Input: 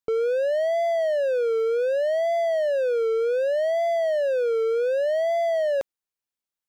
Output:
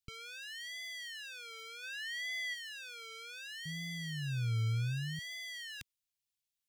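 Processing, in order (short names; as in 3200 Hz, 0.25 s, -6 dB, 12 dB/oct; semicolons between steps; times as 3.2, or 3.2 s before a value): 3.65–5.19 octaver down 2 oct, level -1 dB; Chebyshev band-stop 120–2900 Hz, order 2; 1.82–2.53 bell 1300 Hz +5.5 dB -> +11.5 dB 1.9 oct; gain +1.5 dB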